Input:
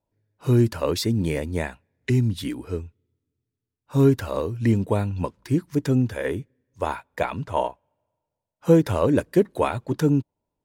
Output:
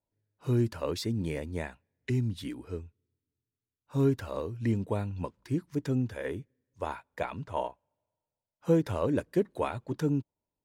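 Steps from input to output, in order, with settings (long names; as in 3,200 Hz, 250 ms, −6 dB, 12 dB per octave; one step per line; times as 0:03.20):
high-shelf EQ 11,000 Hz −6.5 dB
level −8.5 dB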